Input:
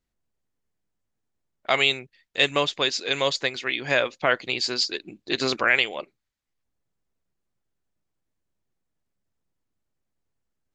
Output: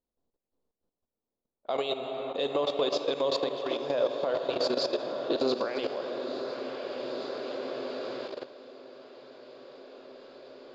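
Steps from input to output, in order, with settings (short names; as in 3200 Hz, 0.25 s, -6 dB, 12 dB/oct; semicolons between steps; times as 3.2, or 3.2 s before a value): diffused feedback echo 0.984 s, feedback 59%, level -8.5 dB; on a send at -6 dB: reverb RT60 4.0 s, pre-delay 18 ms; on the sum: level quantiser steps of 13 dB; high shelf 2600 Hz -12 dB; limiter -24.5 dBFS, peak gain reduction 10 dB; ten-band EQ 125 Hz -4 dB, 250 Hz +6 dB, 500 Hz +11 dB, 1000 Hz +7 dB, 2000 Hz -11 dB, 4000 Hz +11 dB; gain -2 dB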